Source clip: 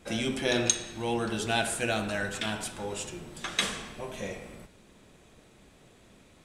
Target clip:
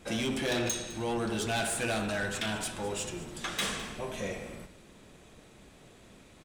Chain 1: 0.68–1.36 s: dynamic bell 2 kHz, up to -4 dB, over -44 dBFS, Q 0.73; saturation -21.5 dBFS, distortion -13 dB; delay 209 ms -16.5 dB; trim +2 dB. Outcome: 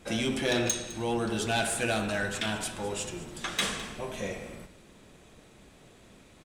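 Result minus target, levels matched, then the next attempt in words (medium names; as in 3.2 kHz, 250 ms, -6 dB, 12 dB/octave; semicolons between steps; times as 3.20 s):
saturation: distortion -5 dB
0.68–1.36 s: dynamic bell 2 kHz, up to -4 dB, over -44 dBFS, Q 0.73; saturation -28 dBFS, distortion -8 dB; delay 209 ms -16.5 dB; trim +2 dB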